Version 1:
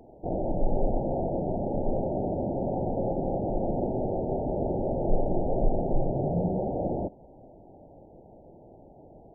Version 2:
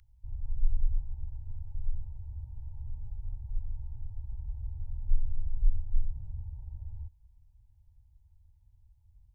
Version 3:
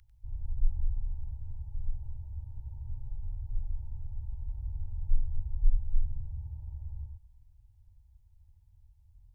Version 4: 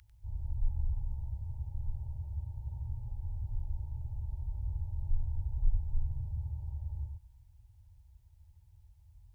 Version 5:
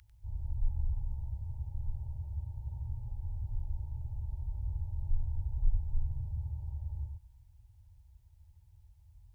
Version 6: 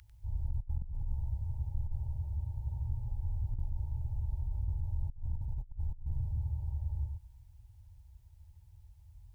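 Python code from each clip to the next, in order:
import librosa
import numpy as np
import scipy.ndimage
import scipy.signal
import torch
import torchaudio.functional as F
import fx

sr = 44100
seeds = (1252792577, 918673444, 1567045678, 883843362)

y1 = scipy.signal.sosfilt(scipy.signal.cheby2(4, 50, [180.0, 750.0], 'bandstop', fs=sr, output='sos'), x)
y1 = y1 * 10.0 ** (1.5 / 20.0)
y2 = y1 + 10.0 ** (-5.0 / 20.0) * np.pad(y1, (int(96 * sr / 1000.0), 0))[:len(y1)]
y3 = fx.highpass(y2, sr, hz=81.0, slope=6)
y3 = y3 * 10.0 ** (6.0 / 20.0)
y4 = y3
y5 = fx.over_compress(y4, sr, threshold_db=-34.0, ratio=-0.5)
y5 = y5 * 10.0 ** (1.0 / 20.0)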